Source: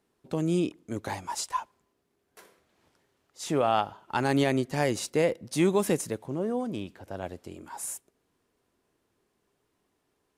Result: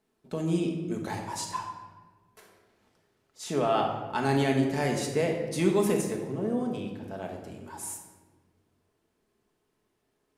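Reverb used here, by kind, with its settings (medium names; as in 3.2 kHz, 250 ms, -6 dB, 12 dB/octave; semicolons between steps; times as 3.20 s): simulated room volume 1000 m³, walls mixed, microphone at 1.5 m; trim -3.5 dB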